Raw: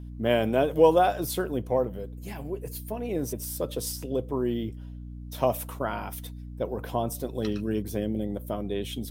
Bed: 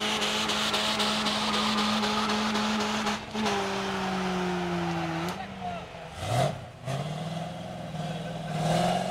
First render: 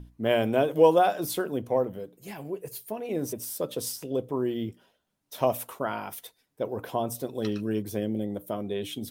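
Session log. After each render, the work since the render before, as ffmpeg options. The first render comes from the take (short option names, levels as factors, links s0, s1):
-af "bandreject=f=60:t=h:w=6,bandreject=f=120:t=h:w=6,bandreject=f=180:t=h:w=6,bandreject=f=240:t=h:w=6,bandreject=f=300:t=h:w=6"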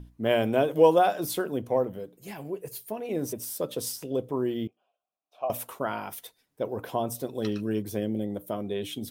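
-filter_complex "[0:a]asettb=1/sr,asplit=3[s0][s1][s2];[s0]atrim=end=4.674[s3];[s1]atrim=start=4.67:end=5.5,asetpts=PTS-STARTPTS,afade=t=in:d=0.004:c=qsin,afade=t=out:st=0.826:d=0.004:c=qsin,asplit=3[s4][s5][s6];[s4]bandpass=f=730:t=q:w=8,volume=1[s7];[s5]bandpass=f=1090:t=q:w=8,volume=0.501[s8];[s6]bandpass=f=2440:t=q:w=8,volume=0.355[s9];[s7][s8][s9]amix=inputs=3:normalize=0[s10];[s2]atrim=start=5.496[s11];[s3][s10]acrossfade=d=0.004:c1=hsin:c2=qsin[s12];[s12][s11]acrossfade=d=0.004:c1=qsin:c2=hsin"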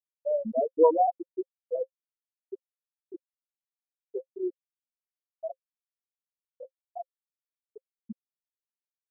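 -af "afftfilt=real='re*gte(hypot(re,im),0.447)':imag='im*gte(hypot(re,im),0.447)':win_size=1024:overlap=0.75,bandreject=f=530:w=15"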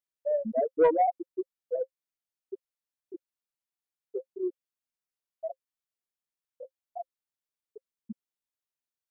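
-af "asoftclip=type=tanh:threshold=0.211"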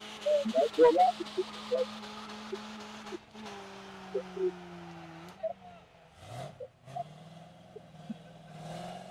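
-filter_complex "[1:a]volume=0.141[s0];[0:a][s0]amix=inputs=2:normalize=0"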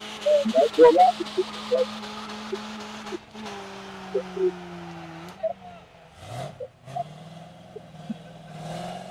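-af "volume=2.51"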